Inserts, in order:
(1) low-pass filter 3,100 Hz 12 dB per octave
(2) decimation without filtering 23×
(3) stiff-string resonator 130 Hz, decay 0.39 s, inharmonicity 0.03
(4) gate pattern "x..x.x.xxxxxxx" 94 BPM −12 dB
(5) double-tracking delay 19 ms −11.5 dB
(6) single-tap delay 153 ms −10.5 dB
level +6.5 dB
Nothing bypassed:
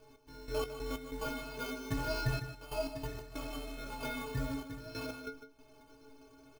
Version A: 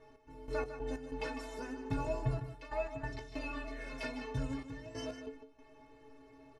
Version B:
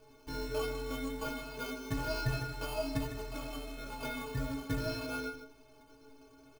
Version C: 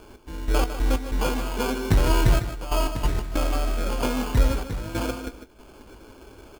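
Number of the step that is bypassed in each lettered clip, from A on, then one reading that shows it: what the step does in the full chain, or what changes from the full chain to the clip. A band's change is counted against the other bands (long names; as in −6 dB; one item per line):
2, distortion level −6 dB
4, change in crest factor −1.5 dB
3, 2 kHz band −3.5 dB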